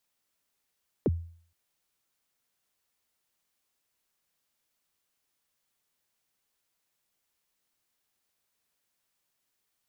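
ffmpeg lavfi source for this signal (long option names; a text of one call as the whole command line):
ffmpeg -f lavfi -i "aevalsrc='0.112*pow(10,-3*t/0.51)*sin(2*PI*(520*0.034/log(84/520)*(exp(log(84/520)*min(t,0.034)/0.034)-1)+84*max(t-0.034,0)))':duration=0.47:sample_rate=44100" out.wav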